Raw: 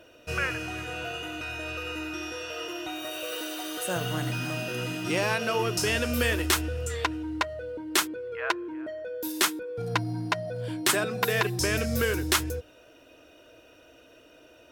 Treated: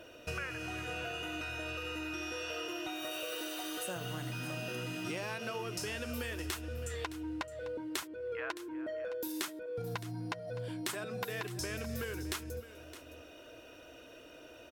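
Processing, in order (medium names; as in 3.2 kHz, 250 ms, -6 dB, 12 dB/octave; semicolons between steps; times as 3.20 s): compression, threshold -38 dBFS, peak gain reduction 18 dB; delay 615 ms -14.5 dB; trim +1 dB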